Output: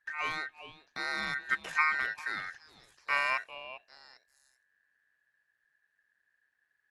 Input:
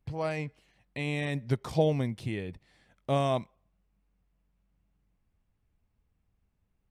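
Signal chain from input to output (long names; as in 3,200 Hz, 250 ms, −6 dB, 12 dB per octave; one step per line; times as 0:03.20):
echo through a band-pass that steps 398 ms, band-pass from 1,200 Hz, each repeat 1.4 octaves, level −6 dB
ring modulation 1,700 Hz
AC-3 64 kbit/s 32,000 Hz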